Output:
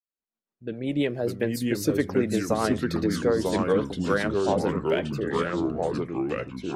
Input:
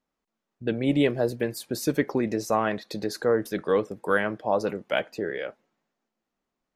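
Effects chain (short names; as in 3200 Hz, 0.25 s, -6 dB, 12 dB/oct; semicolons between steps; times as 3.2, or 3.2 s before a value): opening faded in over 1.43 s; in parallel at -11 dB: one-sided clip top -17.5 dBFS; on the sum: rotary speaker horn 7.5 Hz; echoes that change speed 0.47 s, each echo -3 st, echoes 3; gain -1 dB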